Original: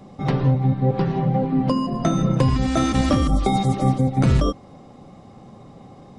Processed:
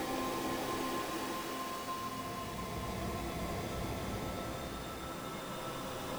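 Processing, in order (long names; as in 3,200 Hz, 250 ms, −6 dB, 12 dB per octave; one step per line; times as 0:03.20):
band-pass filter sweep 400 Hz → 2,800 Hz, 0:00.11–0:02.32
sample-and-hold swept by an LFO 18×, swing 160% 2.5 Hz
extreme stretch with random phases 8.6×, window 0.50 s, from 0:01.67
level +1 dB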